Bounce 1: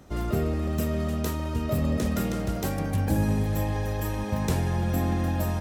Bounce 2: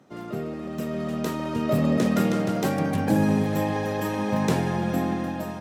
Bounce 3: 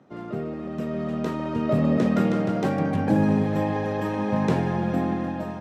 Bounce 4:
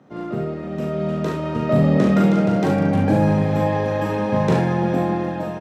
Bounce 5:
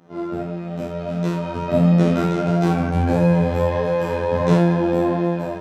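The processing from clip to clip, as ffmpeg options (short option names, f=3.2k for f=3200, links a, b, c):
-af "lowpass=f=4k:p=1,dynaudnorm=f=350:g=7:m=11.5dB,highpass=f=140:w=0.5412,highpass=f=140:w=1.3066,volume=-3.5dB"
-af "aemphasis=mode=reproduction:type=75fm"
-af "aecho=1:1:40|71:0.668|0.447,volume=3dB"
-af "afftfilt=real='hypot(re,im)*cos(PI*b)':imag='0':win_size=2048:overlap=0.75,bandreject=f=65.34:t=h:w=4,bandreject=f=130.68:t=h:w=4,bandreject=f=196.02:t=h:w=4,bandreject=f=261.36:t=h:w=4,bandreject=f=326.7:t=h:w=4,bandreject=f=392.04:t=h:w=4,bandreject=f=457.38:t=h:w=4,bandreject=f=522.72:t=h:w=4,bandreject=f=588.06:t=h:w=4,bandreject=f=653.4:t=h:w=4,bandreject=f=718.74:t=h:w=4,bandreject=f=784.08:t=h:w=4,bandreject=f=849.42:t=h:w=4,bandreject=f=914.76:t=h:w=4,bandreject=f=980.1:t=h:w=4,bandreject=f=1.04544k:t=h:w=4,bandreject=f=1.11078k:t=h:w=4,bandreject=f=1.17612k:t=h:w=4,bandreject=f=1.24146k:t=h:w=4,bandreject=f=1.3068k:t=h:w=4,bandreject=f=1.37214k:t=h:w=4,bandreject=f=1.43748k:t=h:w=4,bandreject=f=1.50282k:t=h:w=4,bandreject=f=1.56816k:t=h:w=4,bandreject=f=1.6335k:t=h:w=4,bandreject=f=1.69884k:t=h:w=4,bandreject=f=1.76418k:t=h:w=4,bandreject=f=1.82952k:t=h:w=4,bandreject=f=1.89486k:t=h:w=4,bandreject=f=1.9602k:t=h:w=4,bandreject=f=2.02554k:t=h:w=4,bandreject=f=2.09088k:t=h:w=4,bandreject=f=2.15622k:t=h:w=4,flanger=delay=17.5:depth=3.6:speed=1.5,volume=7dB"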